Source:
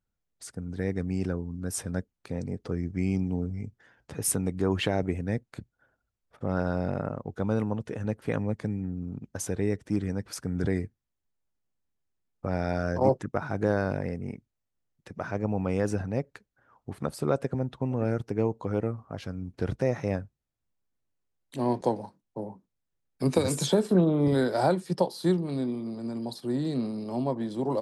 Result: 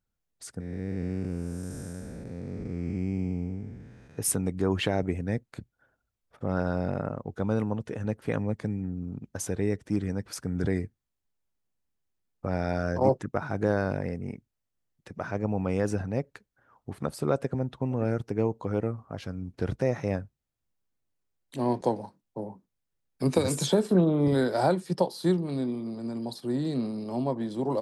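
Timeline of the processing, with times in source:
0.6–4.18 time blur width 0.499 s

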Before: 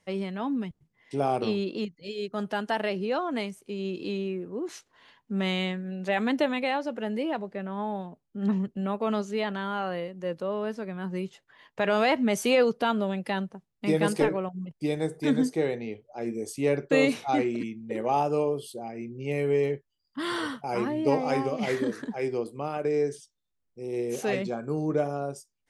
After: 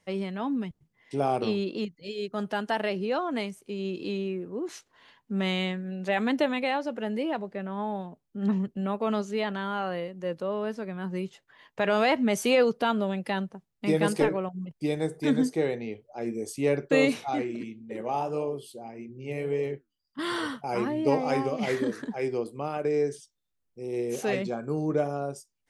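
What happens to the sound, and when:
17.29–20.19 flange 1.7 Hz, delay 3.8 ms, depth 9.2 ms, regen -72%

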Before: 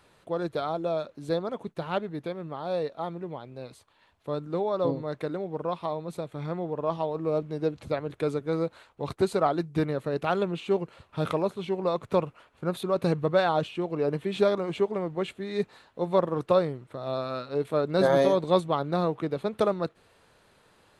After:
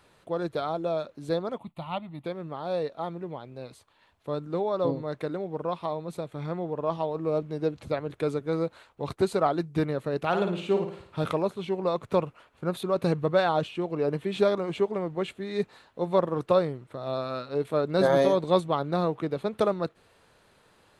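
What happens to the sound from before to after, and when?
1.58–2.25 fixed phaser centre 1600 Hz, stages 6
10.27–11.24 flutter echo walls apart 9.5 m, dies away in 0.52 s

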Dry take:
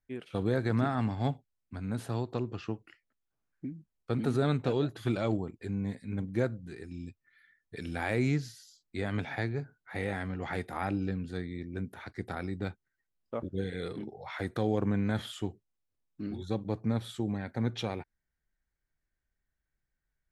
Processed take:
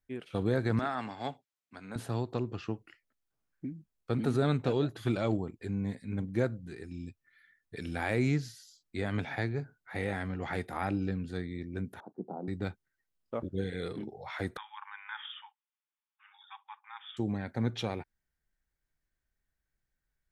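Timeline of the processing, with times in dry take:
0.79–1.96 weighting filter A
12–12.48 elliptic band-pass 170–890 Hz
14.57–17.17 brick-wall FIR band-pass 790–3700 Hz

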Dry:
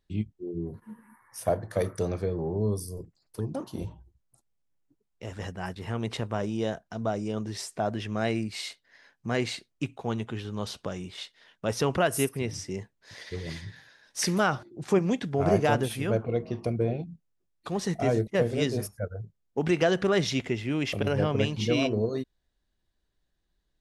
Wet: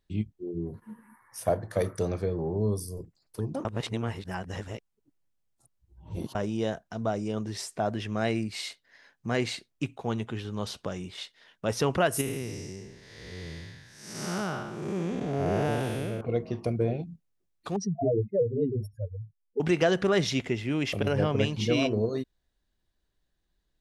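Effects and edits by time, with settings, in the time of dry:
3.65–6.35 reverse
12.21–16.21 time blur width 0.328 s
17.76–19.6 spectral contrast raised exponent 3.5

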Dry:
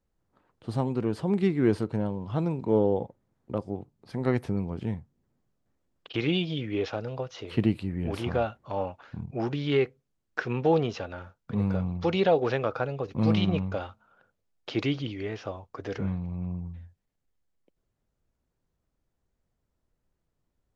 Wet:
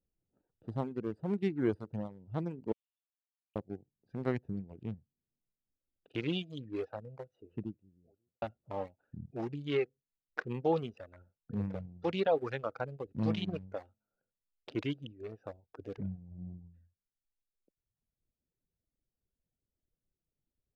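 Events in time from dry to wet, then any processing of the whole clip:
2.72–3.56 brick-wall FIR high-pass 2200 Hz
6.64–8.42 studio fade out
whole clip: Wiener smoothing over 41 samples; reverb removal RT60 1.2 s; low shelf 140 Hz -3.5 dB; gain -5.5 dB

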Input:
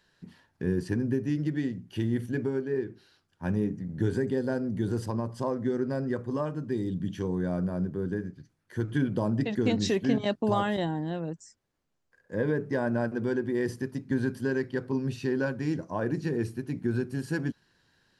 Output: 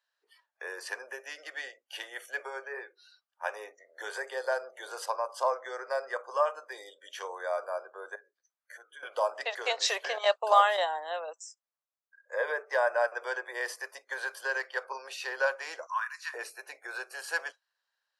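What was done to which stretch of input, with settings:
8.15–9.03 compressor 2:1, threshold -52 dBFS
15.86–16.34 Chebyshev high-pass 1000 Hz, order 5
whole clip: spectral noise reduction 21 dB; steep high-pass 550 Hz 48 dB/oct; bell 1200 Hz +6 dB 0.23 oct; gain +6 dB

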